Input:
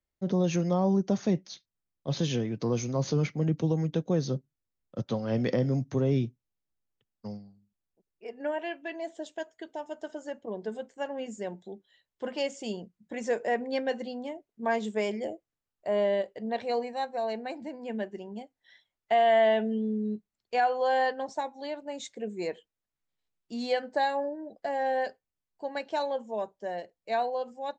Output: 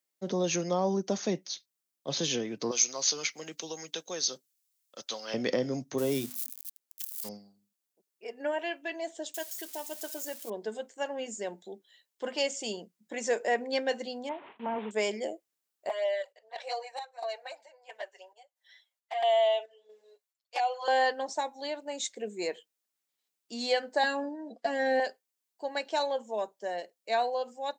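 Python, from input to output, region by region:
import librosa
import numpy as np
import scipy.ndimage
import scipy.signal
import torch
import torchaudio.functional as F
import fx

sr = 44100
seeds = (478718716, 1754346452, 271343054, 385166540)

y = fx.chain(x, sr, fx.highpass(hz=1300.0, slope=6),
    fx.high_shelf(hz=2600.0, db=8.5), at=(2.71, 5.34))
y = fx.chain(y, sr, fx.crossing_spikes(level_db=-33.5),
    fx.hum_notches(base_hz=50, count=5), at=(5.98, 7.29))
y = fx.chain(y, sr, fx.crossing_spikes(level_db=-40.0),
    fx.peak_eq(hz=750.0, db=-3.0, octaves=2.6), at=(9.34, 10.5))
y = fx.chain(y, sr, fx.delta_mod(bps=16000, step_db=-46.5),
    fx.gate_hold(open_db=-49.0, close_db=-51.0, hold_ms=71.0, range_db=-21, attack_ms=1.4, release_ms=100.0),
    fx.peak_eq(hz=940.0, db=11.5, octaves=0.46), at=(14.29, 14.91))
y = fx.chain(y, sr, fx.ellip_highpass(hz=550.0, order=4, stop_db=80),
    fx.chopper(hz=1.5, depth_pct=60, duty_pct=65),
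    fx.env_flanger(rest_ms=8.1, full_db=-23.0), at=(15.89, 20.88))
y = fx.chain(y, sr, fx.lowpass(hz=7000.0, slope=12),
    fx.peak_eq(hz=240.0, db=13.0, octaves=0.27),
    fx.comb(ms=4.3, depth=0.77), at=(24.03, 25.0))
y = scipy.signal.sosfilt(scipy.signal.butter(2, 280.0, 'highpass', fs=sr, output='sos'), y)
y = fx.high_shelf(y, sr, hz=3800.0, db=11.5)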